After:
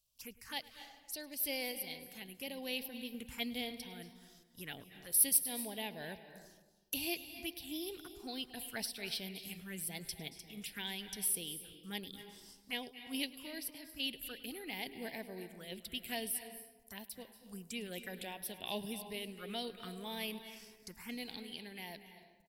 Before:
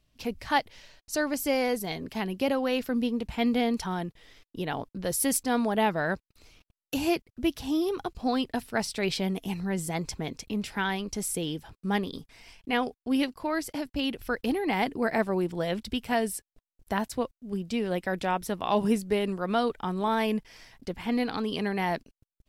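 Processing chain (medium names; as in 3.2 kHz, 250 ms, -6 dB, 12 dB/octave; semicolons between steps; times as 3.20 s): pre-emphasis filter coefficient 0.9; 5.29–5.75 s: transient shaper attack 0 dB, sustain -4 dB; touch-sensitive phaser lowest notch 300 Hz, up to 1.3 kHz, full sweep at -41 dBFS; random-step tremolo; echo from a far wall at 18 m, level -20 dB; on a send at -10 dB: reverberation RT60 1.2 s, pre-delay 222 ms; on the sum: trim +5 dB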